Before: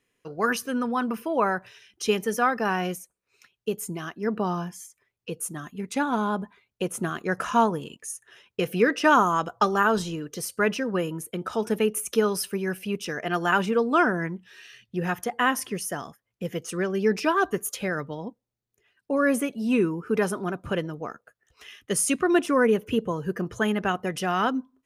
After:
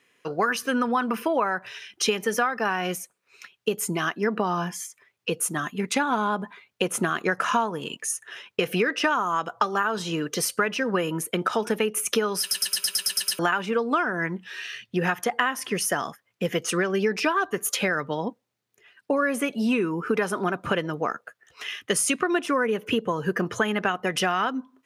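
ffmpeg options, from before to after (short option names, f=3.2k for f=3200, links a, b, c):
-filter_complex "[0:a]asplit=10[a][b][c][d][e][f][g][h][i][j];[a]atrim=end=12.512[k];[b]atrim=start=12.398:end=12.512[l];[c]atrim=start=12.398:end=12.512[m];[d]atrim=start=12.398:end=12.512[n];[e]atrim=start=12.398:end=12.512[o];[f]atrim=start=12.398:end=12.512[p];[g]atrim=start=12.398:end=12.512[q];[h]atrim=start=12.398:end=12.512[r];[i]atrim=start=12.398:end=12.512[s];[j]atrim=start=13.388[t];[k][l]acrossfade=d=0.004:c1=hsin:c2=hsin[u];[u][m]acrossfade=d=0.004:c1=hsin:c2=hsin[v];[v][n]acrossfade=d=0.004:c1=hsin:c2=hsin[w];[w][o]acrossfade=d=0.004:c1=hsin:c2=hsin[x];[x][p]acrossfade=d=0.004:c1=hsin:c2=hsin[y];[y][q]acrossfade=d=0.004:c1=hsin:c2=hsin[z];[z][r]acrossfade=d=0.004:c1=hsin:c2=hsin[aa];[aa][s]acrossfade=d=0.004:c1=hsin:c2=hsin[ab];[ab][t]acrossfade=d=0.004:c1=hsin:c2=hsin,highpass=130,equalizer=f=1.9k:w=0.35:g=7.5,acompressor=threshold=-25dB:ratio=12,volume=5dB"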